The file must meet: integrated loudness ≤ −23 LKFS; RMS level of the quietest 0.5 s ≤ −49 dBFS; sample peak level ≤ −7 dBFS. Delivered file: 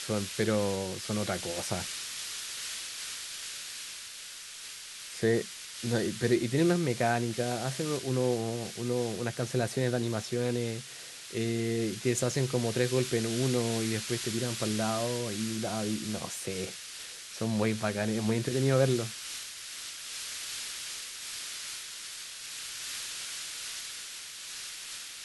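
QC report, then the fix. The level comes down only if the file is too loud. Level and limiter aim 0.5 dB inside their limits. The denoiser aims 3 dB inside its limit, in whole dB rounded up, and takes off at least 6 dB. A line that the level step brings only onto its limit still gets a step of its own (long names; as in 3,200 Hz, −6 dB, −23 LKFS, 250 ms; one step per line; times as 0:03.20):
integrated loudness −32.0 LKFS: in spec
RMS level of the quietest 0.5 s −45 dBFS: out of spec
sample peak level −13.0 dBFS: in spec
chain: broadband denoise 7 dB, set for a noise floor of −45 dBFS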